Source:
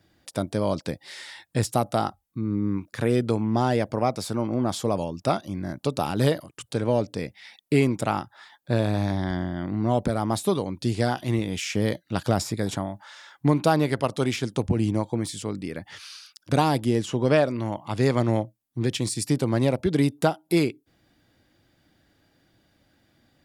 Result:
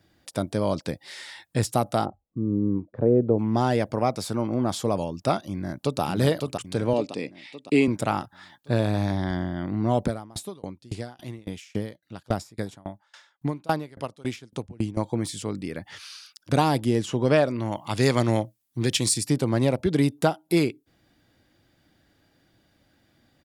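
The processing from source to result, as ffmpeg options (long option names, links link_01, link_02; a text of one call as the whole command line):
ffmpeg -i in.wav -filter_complex "[0:a]asplit=3[link_01][link_02][link_03];[link_01]afade=type=out:start_time=2.04:duration=0.02[link_04];[link_02]lowpass=frequency=560:width_type=q:width=1.7,afade=type=in:start_time=2.04:duration=0.02,afade=type=out:start_time=3.38:duration=0.02[link_05];[link_03]afade=type=in:start_time=3.38:duration=0.02[link_06];[link_04][link_05][link_06]amix=inputs=3:normalize=0,asplit=2[link_07][link_08];[link_08]afade=type=in:start_time=5.52:duration=0.01,afade=type=out:start_time=6.01:duration=0.01,aecho=0:1:560|1120|1680|2240|2800|3360:0.630957|0.315479|0.157739|0.0788697|0.0394348|0.0197174[link_09];[link_07][link_09]amix=inputs=2:normalize=0,asettb=1/sr,asplit=3[link_10][link_11][link_12];[link_10]atrim=end=6.934[link_13];[link_11]atrim=start=6.93:end=7.88,asetpts=PTS-STARTPTS,afade=type=in:duration=0.004:curve=qsin,afade=type=out:start_time=0.946:duration=0.004:curve=qsin,highpass=220,equalizer=frequency=280:width_type=q:width=4:gain=4,equalizer=frequency=660:width_type=q:width=4:gain=-3,equalizer=frequency=1500:width_type=q:width=4:gain=-9,equalizer=frequency=2600:width_type=q:width=4:gain=5,equalizer=frequency=5800:width_type=q:width=4:gain=-6,lowpass=frequency=8600:width=0.5412,lowpass=frequency=8600:width=1.3066[link_14];[link_12]atrim=start=7.876[link_15];[link_13][link_14]acrossfade=duration=0.004:curve1=hsin:curve2=qsin[link_16];[link_16][link_15]acrossfade=duration=0.004:curve1=qsin:curve2=hsin,asettb=1/sr,asplit=3[link_17][link_18][link_19];[link_17]atrim=end=10.084[link_20];[link_18]atrim=start=10.08:end=14.97,asetpts=PTS-STARTPTS,afade=type=in:duration=0.004:curve=qsin,afade=type=out:start_time=4.886:duration=0.004:curve=qsin,aeval=exprs='val(0)*pow(10,-28*if(lt(mod(3.6*n/s,1),2*abs(3.6)/1000),1-mod(3.6*n/s,1)/(2*abs(3.6)/1000),(mod(3.6*n/s,1)-2*abs(3.6)/1000)/(1-2*abs(3.6)/1000))/20)':channel_layout=same[link_21];[link_19]atrim=start=14.966[link_22];[link_20][link_21]acrossfade=duration=0.004:curve1=hsin:curve2=qsin[link_23];[link_23][link_22]acrossfade=duration=0.004:curve1=qsin:curve2=hsin,asettb=1/sr,asplit=3[link_24][link_25][link_26];[link_24]atrim=end=17.714[link_27];[link_25]atrim=start=17.71:end=19.18,asetpts=PTS-STARTPTS,afade=type=in:duration=0.004:curve=qsin,afade=type=out:start_time=1.466:duration=0.004:curve=qsin,highshelf=frequency=2200:gain=8.5[link_28];[link_26]atrim=start=19.176[link_29];[link_27][link_28]acrossfade=duration=0.004:curve1=hsin:curve2=qsin[link_30];[link_30][link_29]acrossfade=duration=0.004:curve1=qsin:curve2=hsin" out.wav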